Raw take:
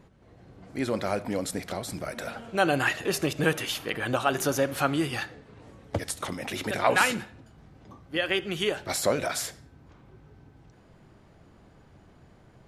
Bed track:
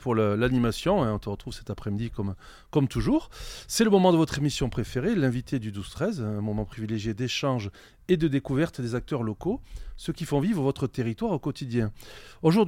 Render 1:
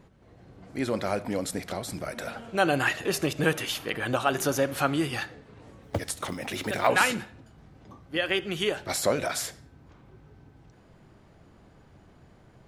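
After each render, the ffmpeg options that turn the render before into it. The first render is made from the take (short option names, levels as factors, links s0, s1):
-filter_complex "[0:a]asettb=1/sr,asplit=3[s0][s1][s2];[s0]atrim=end=5.824[s3];[s1]atrim=start=5.82:end=6.87,asetpts=PTS-STARTPTS,afade=t=in:d=0.004:c=qsin,afade=t=out:st=1.046:d=0.004:c=qsin,acrusher=bits=7:mode=log:mix=0:aa=0.000001[s4];[s2]atrim=start=6.866[s5];[s3][s4]acrossfade=d=0.004:c1=hsin:c2=qsin[s6];[s6][s5]acrossfade=d=0.004:c1=qsin:c2=hsin"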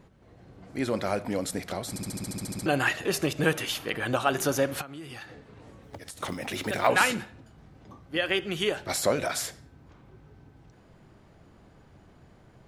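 -filter_complex "[0:a]asettb=1/sr,asplit=3[s0][s1][s2];[s0]atrim=end=4.814[s3];[s1]atrim=start=4.81:end=6.23,asetpts=PTS-STARTPTS,afade=t=in:d=0.004:c=qsin,afade=t=out:st=1.416:d=0.004:c=qsin,acompressor=threshold=0.0126:ratio=8:attack=3.2:release=140:knee=1:detection=peak[s4];[s2]atrim=start=6.226[s5];[s3][s4]acrossfade=d=0.004:c1=hsin:c2=qsin[s6];[s6][s5]acrossfade=d=0.004:c1=qsin:c2=hsin,asplit=12[s7][s8][s9][s10][s11][s12][s13][s14][s15][s16][s17][s18];[s7]atrim=end=1.962[s19];[s8]atrim=start=1.888:end=1.962[s20];[s9]atrim=start=1.888:end=1.962[s21];[s10]atrim=start=1.888:end=1.962[s22];[s11]atrim=start=1.888:end=1.962[s23];[s12]atrim=start=1.888:end=1.962[s24];[s13]atrim=start=1.888:end=1.962[s25];[s14]atrim=start=1.888:end=1.962[s26];[s15]atrim=start=1.888:end=1.962[s27];[s16]atrim=start=1.888:end=1.962[s28];[s17]atrim=start=1.888:end=1.962[s29];[s18]atrim=start=2.658[s30];[s19][s20]acrossfade=d=0.004:c1=hsin:c2=hsin[s31];[s31][s21]acrossfade=d=0.004:c1=hsin:c2=hsin[s32];[s32][s22]acrossfade=d=0.004:c1=hsin:c2=hsin[s33];[s33][s23]acrossfade=d=0.004:c1=hsin:c2=hsin[s34];[s34][s24]acrossfade=d=0.004:c1=hsin:c2=hsin[s35];[s35][s25]acrossfade=d=0.004:c1=hsin:c2=hsin[s36];[s36][s26]acrossfade=d=0.004:c1=hsin:c2=hsin[s37];[s37][s27]acrossfade=d=0.004:c1=hsin:c2=hsin[s38];[s38][s28]acrossfade=d=0.004:c1=hsin:c2=hsin[s39];[s39][s29]acrossfade=d=0.004:c1=hsin:c2=hsin[s40];[s40][s30]acrossfade=d=0.004:c1=hsin:c2=hsin"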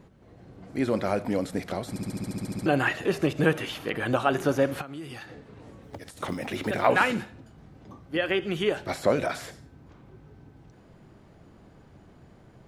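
-filter_complex "[0:a]acrossover=split=3100[s0][s1];[s1]acompressor=threshold=0.00631:ratio=4:attack=1:release=60[s2];[s0][s2]amix=inputs=2:normalize=0,equalizer=f=250:t=o:w=2.7:g=3.5"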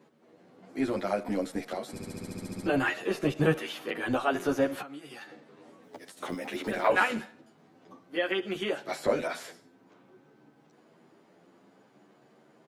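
-filter_complex "[0:a]acrossover=split=190|3500[s0][s1][s2];[s0]acrusher=bits=4:mix=0:aa=0.5[s3];[s3][s1][s2]amix=inputs=3:normalize=0,asplit=2[s4][s5];[s5]adelay=10.4,afreqshift=0.56[s6];[s4][s6]amix=inputs=2:normalize=1"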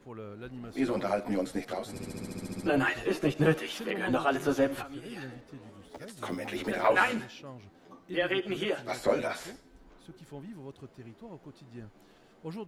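-filter_complex "[1:a]volume=0.106[s0];[0:a][s0]amix=inputs=2:normalize=0"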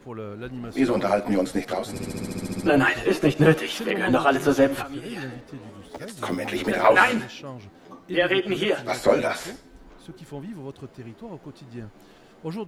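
-af "volume=2.51"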